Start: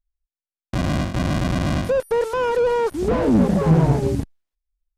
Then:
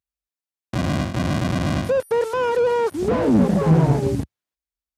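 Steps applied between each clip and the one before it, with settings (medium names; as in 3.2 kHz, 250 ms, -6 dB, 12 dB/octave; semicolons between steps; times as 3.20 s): high-pass 72 Hz 24 dB/octave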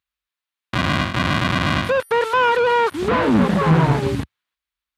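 high-order bell 2 kHz +10.5 dB 2.4 oct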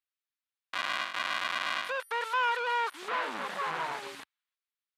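high-pass 900 Hz 12 dB/octave; trim -9 dB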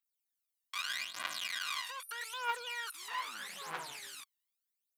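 phaser 0.8 Hz, delay 1.1 ms, feedback 76%; pre-emphasis filter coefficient 0.9; trim +1 dB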